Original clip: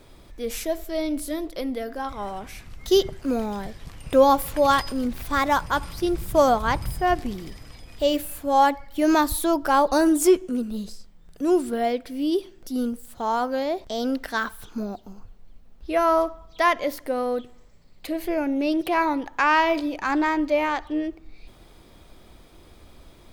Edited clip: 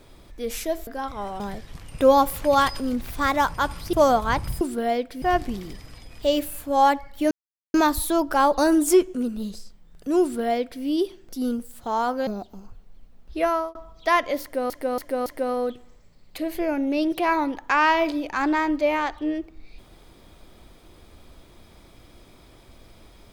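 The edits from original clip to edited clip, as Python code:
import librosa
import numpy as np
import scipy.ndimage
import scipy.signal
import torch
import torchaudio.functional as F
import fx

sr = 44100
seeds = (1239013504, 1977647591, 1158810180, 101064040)

y = fx.edit(x, sr, fx.cut(start_s=0.87, length_s=1.01),
    fx.cut(start_s=2.41, length_s=1.11),
    fx.cut(start_s=6.05, length_s=0.26),
    fx.insert_silence(at_s=9.08, length_s=0.43),
    fx.duplicate(start_s=11.56, length_s=0.61, to_s=6.99),
    fx.cut(start_s=13.61, length_s=1.19),
    fx.fade_out_span(start_s=15.96, length_s=0.32),
    fx.repeat(start_s=16.95, length_s=0.28, count=4), tone=tone)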